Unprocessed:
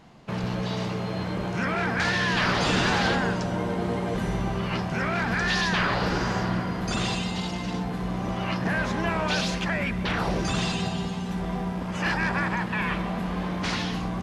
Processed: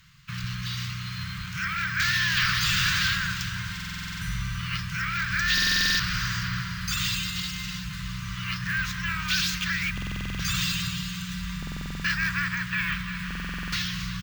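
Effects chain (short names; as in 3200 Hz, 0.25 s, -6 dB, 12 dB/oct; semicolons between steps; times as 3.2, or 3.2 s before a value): inverse Chebyshev band-stop 250–800 Hz, stop band 40 dB; high shelf 3500 Hz +7.5 dB; on a send: feedback echo 0.348 s, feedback 60%, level -12 dB; on the sum: careless resampling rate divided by 2×, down filtered, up hold; stuck buffer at 3.75/5.53/9.93/11.58/13.26, samples 2048, times 9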